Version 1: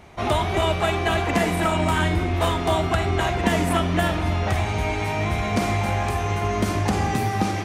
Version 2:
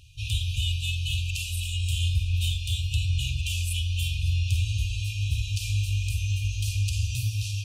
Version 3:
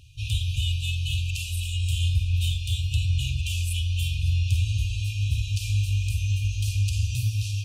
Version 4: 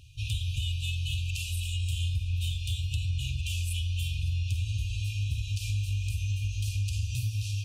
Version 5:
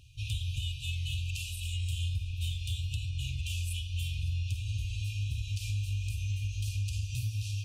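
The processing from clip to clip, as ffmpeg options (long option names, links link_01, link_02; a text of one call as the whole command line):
ffmpeg -i in.wav -af "afftfilt=real='re*(1-between(b*sr/4096,130,2400))':imag='im*(1-between(b*sr/4096,130,2400))':win_size=4096:overlap=0.75" out.wav
ffmpeg -i in.wav -af "equalizer=frequency=220:width=0.4:gain=5,volume=-1dB" out.wav
ffmpeg -i in.wav -af "acompressor=threshold=-27dB:ratio=2.5,volume=-1.5dB" out.wav
ffmpeg -i in.wav -af "flanger=delay=5.7:depth=3.2:regen=-89:speed=1.3:shape=sinusoidal,volume=1.5dB" out.wav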